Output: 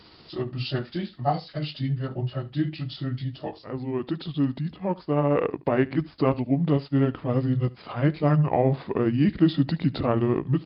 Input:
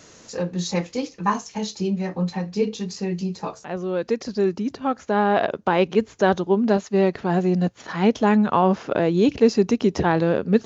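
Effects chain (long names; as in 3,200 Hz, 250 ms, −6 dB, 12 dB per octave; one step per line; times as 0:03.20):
pitch shift by two crossfaded delay taps −6 semitones
single-tap delay 73 ms −21.5 dB
level −2 dB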